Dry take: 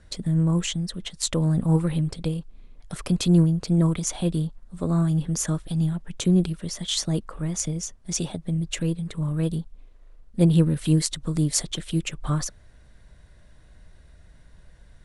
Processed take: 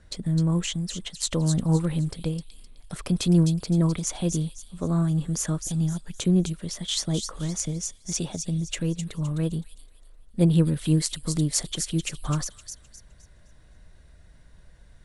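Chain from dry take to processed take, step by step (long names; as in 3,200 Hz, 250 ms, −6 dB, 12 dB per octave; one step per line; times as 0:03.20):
delay with a high-pass on its return 258 ms, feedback 32%, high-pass 4,300 Hz, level −4 dB
level −1.5 dB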